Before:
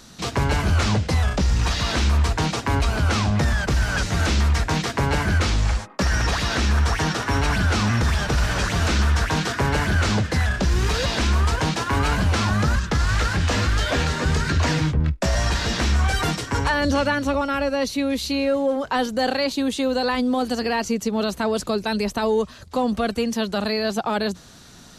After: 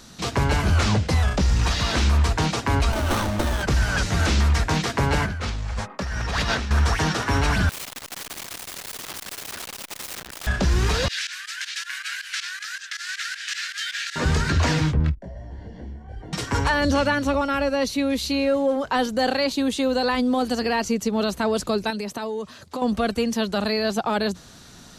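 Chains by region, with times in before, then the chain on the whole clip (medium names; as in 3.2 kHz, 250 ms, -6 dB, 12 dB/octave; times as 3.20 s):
2.92–3.63 s: tone controls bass -6 dB, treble +11 dB + comb 3.3 ms, depth 70% + sliding maximum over 17 samples
5.21–6.71 s: treble shelf 5.6 kHz -6 dB + compressor with a negative ratio -26 dBFS + band-stop 320 Hz, Q 6.1
7.69–10.47 s: treble shelf 4.1 kHz -3.5 dB + integer overflow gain 26.5 dB + transformer saturation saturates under 690 Hz
11.08–14.16 s: elliptic high-pass 1.6 kHz, stop band 60 dB + volume shaper 159 bpm, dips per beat 2, -18 dB, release 69 ms + transformer saturation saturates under 990 Hz
15.15–16.33 s: compression 5:1, threshold -28 dBFS + boxcar filter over 35 samples + detune thickener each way 36 cents
21.90–22.82 s: high-pass 130 Hz + compression 5:1, threshold -26 dBFS
whole clip: none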